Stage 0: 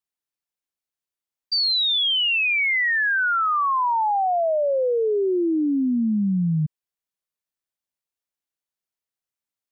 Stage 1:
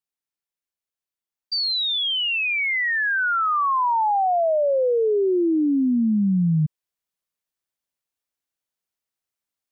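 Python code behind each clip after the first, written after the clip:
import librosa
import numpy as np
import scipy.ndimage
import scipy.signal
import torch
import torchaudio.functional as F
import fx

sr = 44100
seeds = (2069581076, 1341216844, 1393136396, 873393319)

y = fx.rider(x, sr, range_db=10, speed_s=0.5)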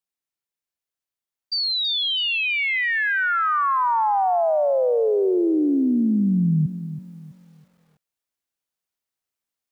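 y = fx.echo_wet_bandpass(x, sr, ms=217, feedback_pct=32, hz=480.0, wet_db=-21)
y = fx.echo_crushed(y, sr, ms=327, feedback_pct=35, bits=9, wet_db=-12.0)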